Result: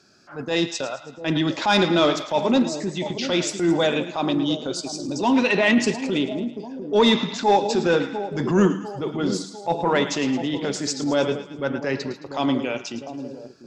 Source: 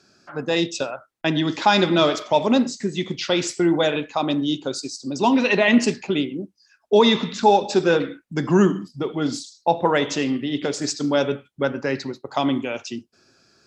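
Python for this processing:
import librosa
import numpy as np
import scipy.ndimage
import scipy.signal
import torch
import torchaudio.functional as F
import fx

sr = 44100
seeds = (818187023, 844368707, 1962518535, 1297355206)

y = fx.echo_split(x, sr, split_hz=760.0, low_ms=698, high_ms=109, feedback_pct=52, wet_db=-12.0)
y = fx.transient(y, sr, attack_db=-8, sustain_db=-2)
y = 10.0 ** (-7.5 / 20.0) * np.tanh(y / 10.0 ** (-7.5 / 20.0))
y = F.gain(torch.from_numpy(y), 1.0).numpy()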